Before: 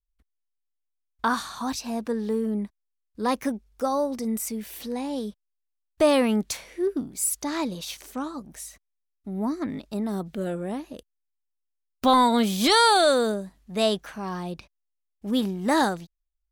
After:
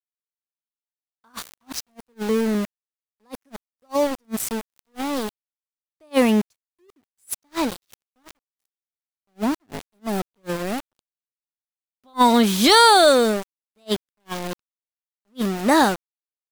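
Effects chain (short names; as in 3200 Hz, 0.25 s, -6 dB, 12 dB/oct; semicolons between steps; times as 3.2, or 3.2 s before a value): sample gate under -29.5 dBFS; attack slew limiter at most 540 dB/s; gain +5.5 dB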